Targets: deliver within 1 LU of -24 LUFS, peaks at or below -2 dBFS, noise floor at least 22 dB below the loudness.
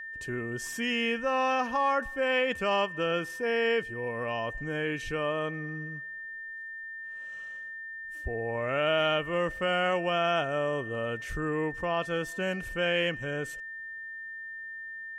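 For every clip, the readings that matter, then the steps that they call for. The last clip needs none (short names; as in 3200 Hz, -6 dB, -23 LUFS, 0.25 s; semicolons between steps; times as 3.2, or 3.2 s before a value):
steady tone 1800 Hz; tone level -38 dBFS; loudness -30.5 LUFS; peak -15.0 dBFS; loudness target -24.0 LUFS
-> notch 1800 Hz, Q 30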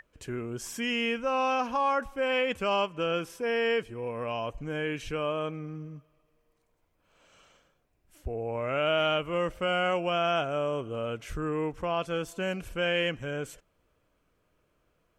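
steady tone none; loudness -30.0 LUFS; peak -15.5 dBFS; loudness target -24.0 LUFS
-> gain +6 dB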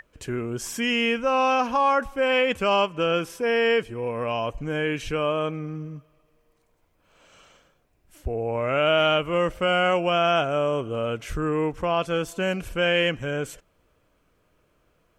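loudness -24.0 LUFS; peak -9.5 dBFS; noise floor -67 dBFS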